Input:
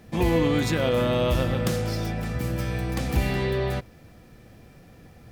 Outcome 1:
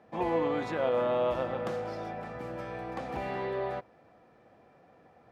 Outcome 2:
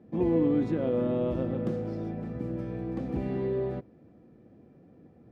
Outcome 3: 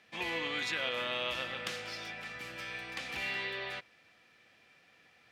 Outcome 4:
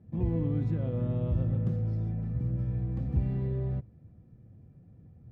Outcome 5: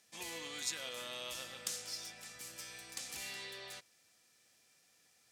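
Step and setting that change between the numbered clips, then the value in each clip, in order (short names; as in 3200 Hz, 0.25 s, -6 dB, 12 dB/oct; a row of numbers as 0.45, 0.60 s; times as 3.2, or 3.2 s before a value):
band-pass, frequency: 800, 300, 2600, 110, 7400 Hz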